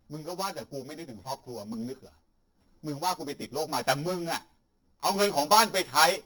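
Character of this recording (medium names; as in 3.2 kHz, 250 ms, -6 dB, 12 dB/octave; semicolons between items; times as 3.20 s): a buzz of ramps at a fixed pitch in blocks of 8 samples; random-step tremolo; a shimmering, thickened sound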